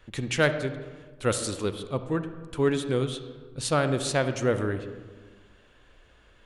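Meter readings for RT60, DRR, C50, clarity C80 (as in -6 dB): 1.4 s, 9.5 dB, 10.0 dB, 11.5 dB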